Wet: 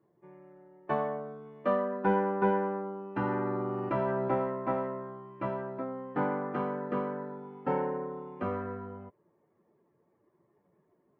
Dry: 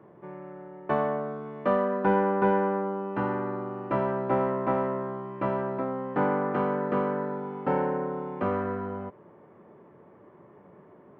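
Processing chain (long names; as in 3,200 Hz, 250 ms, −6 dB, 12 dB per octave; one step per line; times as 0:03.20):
spectral dynamics exaggerated over time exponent 1.5
0:03.16–0:04.31: envelope flattener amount 70%
level −2 dB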